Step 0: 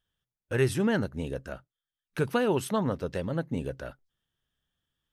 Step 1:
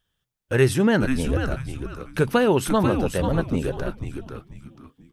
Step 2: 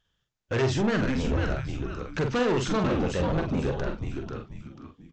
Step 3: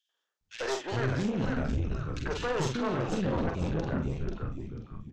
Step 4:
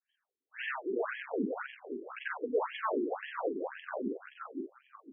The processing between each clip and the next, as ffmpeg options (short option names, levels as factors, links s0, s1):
-filter_complex "[0:a]asplit=5[s0][s1][s2][s3][s4];[s1]adelay=490,afreqshift=-140,volume=0.501[s5];[s2]adelay=980,afreqshift=-280,volume=0.15[s6];[s3]adelay=1470,afreqshift=-420,volume=0.0452[s7];[s4]adelay=1960,afreqshift=-560,volume=0.0135[s8];[s0][s5][s6][s7][s8]amix=inputs=5:normalize=0,volume=2.24"
-filter_complex "[0:a]aresample=16000,asoftclip=type=tanh:threshold=0.075,aresample=44100,asplit=2[s0][s1];[s1]adelay=45,volume=0.531[s2];[s0][s2]amix=inputs=2:normalize=0"
-filter_complex "[0:a]acrossover=split=370|2400[s0][s1][s2];[s1]adelay=90[s3];[s0]adelay=410[s4];[s4][s3][s2]amix=inputs=3:normalize=0,aeval=exprs='(tanh(12.6*val(0)+0.45)-tanh(0.45))/12.6':c=same"
-af "afftfilt=real='re*between(b*sr/1024,300*pow(2400/300,0.5+0.5*sin(2*PI*1.9*pts/sr))/1.41,300*pow(2400/300,0.5+0.5*sin(2*PI*1.9*pts/sr))*1.41)':imag='im*between(b*sr/1024,300*pow(2400/300,0.5+0.5*sin(2*PI*1.9*pts/sr))/1.41,300*pow(2400/300,0.5+0.5*sin(2*PI*1.9*pts/sr))*1.41)':win_size=1024:overlap=0.75,volume=1.68"